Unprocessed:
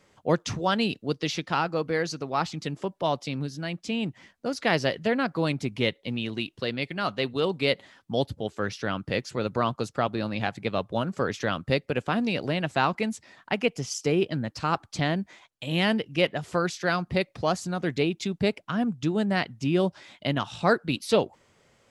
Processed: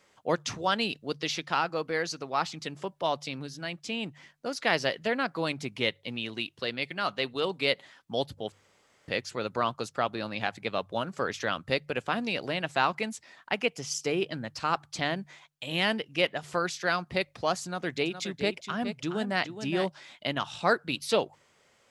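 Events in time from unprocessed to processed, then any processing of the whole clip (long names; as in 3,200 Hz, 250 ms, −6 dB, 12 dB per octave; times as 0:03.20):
0:08.52–0:09.08: fill with room tone
0:17.64–0:19.88: single-tap delay 417 ms −9.5 dB
whole clip: low-shelf EQ 380 Hz −10 dB; hum removal 49.2 Hz, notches 3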